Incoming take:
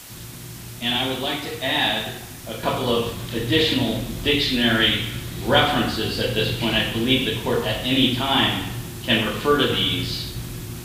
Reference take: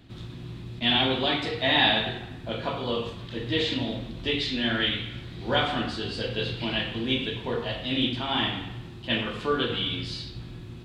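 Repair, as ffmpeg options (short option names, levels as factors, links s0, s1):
-af "adeclick=t=4,afwtdn=0.01,asetnsamples=n=441:p=0,asendcmd='2.63 volume volume -7.5dB',volume=1"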